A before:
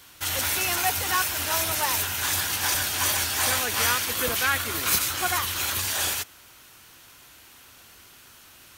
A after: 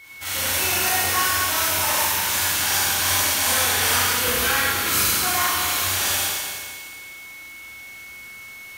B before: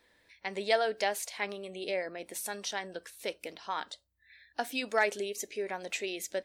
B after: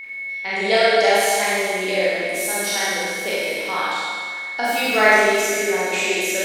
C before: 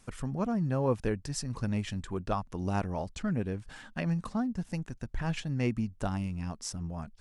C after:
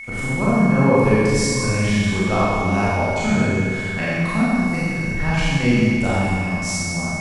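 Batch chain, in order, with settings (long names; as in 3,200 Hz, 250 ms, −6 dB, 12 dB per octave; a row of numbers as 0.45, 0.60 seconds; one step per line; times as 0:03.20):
peak hold with a decay on every bin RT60 0.35 s
steady tone 2,200 Hz −37 dBFS
four-comb reverb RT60 2 s, combs from 29 ms, DRR −8.5 dB
loudness normalisation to −19 LKFS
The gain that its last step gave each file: −6.0, +4.5, +4.5 decibels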